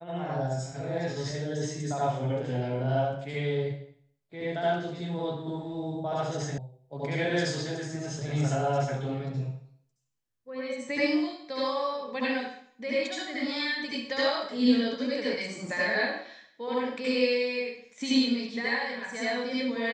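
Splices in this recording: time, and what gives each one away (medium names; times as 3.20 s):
6.58 s: sound stops dead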